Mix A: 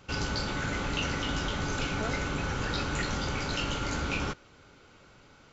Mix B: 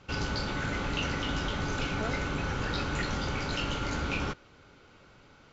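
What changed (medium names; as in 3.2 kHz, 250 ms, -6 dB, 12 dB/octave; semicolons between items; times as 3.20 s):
background: add distance through air 100 m; master: add treble shelf 6.3 kHz +5.5 dB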